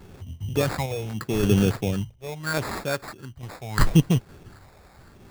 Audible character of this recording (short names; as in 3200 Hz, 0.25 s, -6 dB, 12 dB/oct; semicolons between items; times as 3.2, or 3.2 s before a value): phasing stages 4, 0.78 Hz, lowest notch 250–4000 Hz; random-step tremolo 3.5 Hz; aliases and images of a low sample rate 3000 Hz, jitter 0%